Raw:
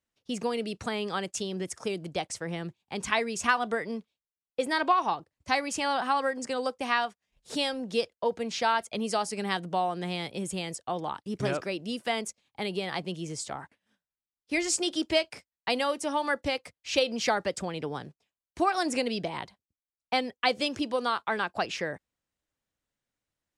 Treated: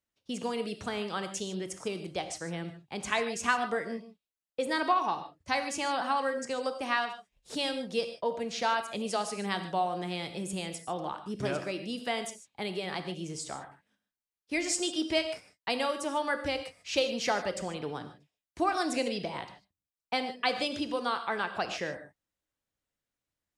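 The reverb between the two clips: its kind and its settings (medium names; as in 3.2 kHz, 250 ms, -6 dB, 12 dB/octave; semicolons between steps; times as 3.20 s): gated-style reverb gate 170 ms flat, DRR 8 dB; trim -3 dB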